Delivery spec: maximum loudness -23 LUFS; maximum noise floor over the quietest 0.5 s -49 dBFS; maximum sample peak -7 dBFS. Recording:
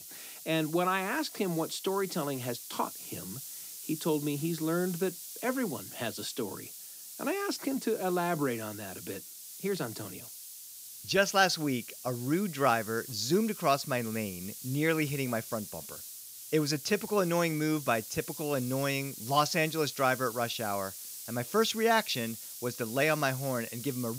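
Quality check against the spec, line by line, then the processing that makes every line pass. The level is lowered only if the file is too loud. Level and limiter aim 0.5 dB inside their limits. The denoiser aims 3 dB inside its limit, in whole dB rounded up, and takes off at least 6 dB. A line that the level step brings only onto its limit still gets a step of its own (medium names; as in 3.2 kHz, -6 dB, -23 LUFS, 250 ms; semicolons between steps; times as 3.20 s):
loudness -31.5 LUFS: pass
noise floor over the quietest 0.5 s -47 dBFS: fail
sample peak -13.0 dBFS: pass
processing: noise reduction 6 dB, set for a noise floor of -47 dBFS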